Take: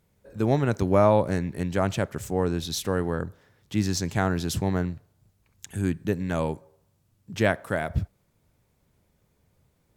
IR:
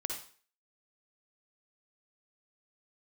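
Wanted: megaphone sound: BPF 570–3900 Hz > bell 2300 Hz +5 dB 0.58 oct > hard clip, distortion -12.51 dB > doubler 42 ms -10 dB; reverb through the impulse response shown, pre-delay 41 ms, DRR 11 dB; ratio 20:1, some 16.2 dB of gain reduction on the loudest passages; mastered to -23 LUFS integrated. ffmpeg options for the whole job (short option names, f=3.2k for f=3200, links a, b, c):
-filter_complex "[0:a]acompressor=threshold=-30dB:ratio=20,asplit=2[a][b];[1:a]atrim=start_sample=2205,adelay=41[c];[b][c]afir=irnorm=-1:irlink=0,volume=-12.5dB[d];[a][d]amix=inputs=2:normalize=0,highpass=570,lowpass=3.9k,equalizer=f=2.3k:t=o:w=0.58:g=5,asoftclip=type=hard:threshold=-32.5dB,asplit=2[e][f];[f]adelay=42,volume=-10dB[g];[e][g]amix=inputs=2:normalize=0,volume=20dB"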